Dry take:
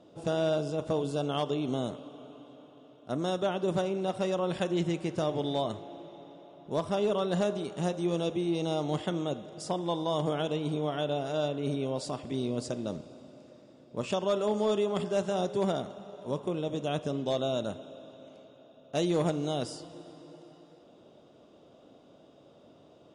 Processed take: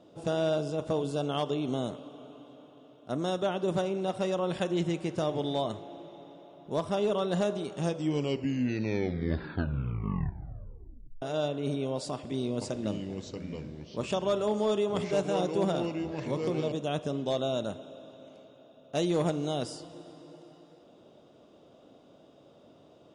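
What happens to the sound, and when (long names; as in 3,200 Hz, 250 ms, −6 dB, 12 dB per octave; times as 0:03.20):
0:07.69: tape stop 3.53 s
0:12.13–0:16.72: delay with pitch and tempo change per echo 483 ms, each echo −4 semitones, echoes 2, each echo −6 dB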